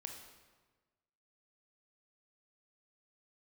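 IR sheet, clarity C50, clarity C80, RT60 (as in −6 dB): 5.0 dB, 7.0 dB, 1.3 s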